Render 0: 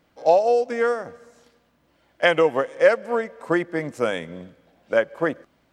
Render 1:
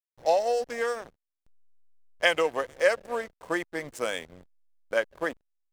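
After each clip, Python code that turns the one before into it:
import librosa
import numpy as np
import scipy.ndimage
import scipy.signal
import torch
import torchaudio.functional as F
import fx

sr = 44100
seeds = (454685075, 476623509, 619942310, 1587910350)

y = fx.riaa(x, sr, side='recording')
y = fx.notch(y, sr, hz=1400.0, q=18.0)
y = fx.backlash(y, sr, play_db=-32.0)
y = F.gain(torch.from_numpy(y), -5.0).numpy()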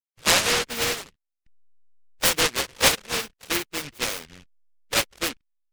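y = fx.spec_topn(x, sr, count=16)
y = fx.noise_mod_delay(y, sr, seeds[0], noise_hz=2200.0, depth_ms=0.45)
y = F.gain(torch.from_numpy(y), 3.5).numpy()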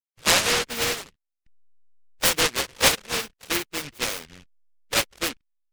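y = x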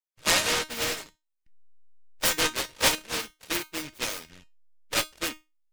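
y = fx.comb_fb(x, sr, f0_hz=310.0, decay_s=0.23, harmonics='all', damping=0.0, mix_pct=70)
y = F.gain(torch.from_numpy(y), 4.5).numpy()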